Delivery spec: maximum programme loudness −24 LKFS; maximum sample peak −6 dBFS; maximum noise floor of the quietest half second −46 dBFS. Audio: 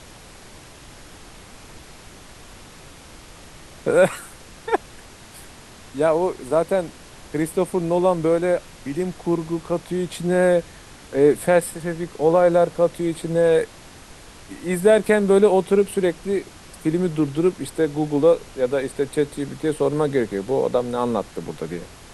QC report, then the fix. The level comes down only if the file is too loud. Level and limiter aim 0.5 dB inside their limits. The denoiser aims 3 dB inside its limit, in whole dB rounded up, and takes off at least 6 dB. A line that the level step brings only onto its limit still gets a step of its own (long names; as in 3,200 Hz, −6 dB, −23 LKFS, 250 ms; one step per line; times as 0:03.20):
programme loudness −21.0 LKFS: out of spec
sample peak −3.5 dBFS: out of spec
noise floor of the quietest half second −43 dBFS: out of spec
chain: level −3.5 dB